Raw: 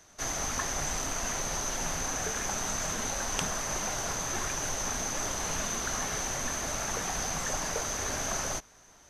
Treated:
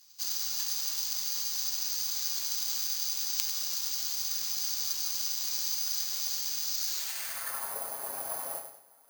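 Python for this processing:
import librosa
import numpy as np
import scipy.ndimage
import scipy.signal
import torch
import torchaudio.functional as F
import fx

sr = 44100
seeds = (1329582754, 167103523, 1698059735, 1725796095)

p1 = fx.lower_of_two(x, sr, delay_ms=7.4)
p2 = fx.peak_eq(p1, sr, hz=9200.0, db=-4.0, octaves=0.32)
p3 = fx.filter_sweep_bandpass(p2, sr, from_hz=7200.0, to_hz=770.0, start_s=6.64, end_s=7.77, q=1.6)
p4 = fx.peak_eq(p3, sr, hz=4400.0, db=9.5, octaves=0.32)
p5 = p4 + fx.echo_feedback(p4, sr, ms=97, feedback_pct=40, wet_db=-7.5, dry=0)
p6 = (np.kron(p5[::4], np.eye(4)[0]) * 4)[:len(p5)]
y = p6 * librosa.db_to_amplitude(-1.0)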